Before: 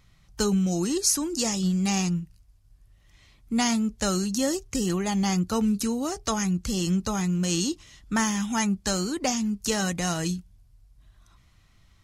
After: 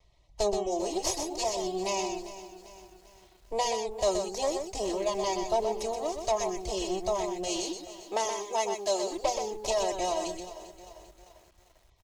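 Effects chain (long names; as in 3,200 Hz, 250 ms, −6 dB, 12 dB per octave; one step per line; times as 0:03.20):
lower of the sound and its delayed copy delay 3.1 ms
0:07.62–0:09.12: high-pass filter 230 Hz 12 dB per octave
reverb reduction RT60 0.67 s
low-pass filter 6,300 Hz 12 dB per octave
parametric band 770 Hz +8 dB 1.7 octaves
phaser with its sweep stopped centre 600 Hz, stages 4
single-tap delay 125 ms −6.5 dB
feedback echo at a low word length 396 ms, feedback 55%, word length 8 bits, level −14.5 dB
level −2.5 dB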